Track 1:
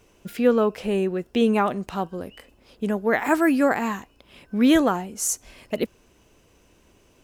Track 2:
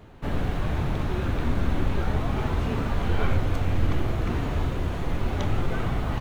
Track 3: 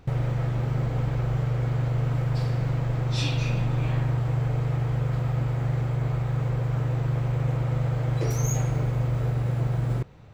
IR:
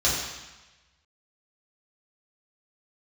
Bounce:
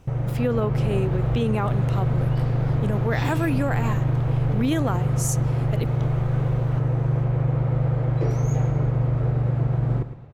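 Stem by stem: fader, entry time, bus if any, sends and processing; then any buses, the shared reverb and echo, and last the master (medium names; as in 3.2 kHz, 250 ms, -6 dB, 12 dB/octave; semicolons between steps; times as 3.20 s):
-2.5 dB, 0.00 s, no send, no echo send, none
-10.5 dB, 0.60 s, no send, no echo send, none
+0.5 dB, 0.00 s, no send, echo send -12 dB, level rider gain up to 3.5 dB; low-pass 1.1 kHz 6 dB/octave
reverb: none
echo: feedback delay 111 ms, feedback 34%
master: peak limiter -13.5 dBFS, peak gain reduction 6.5 dB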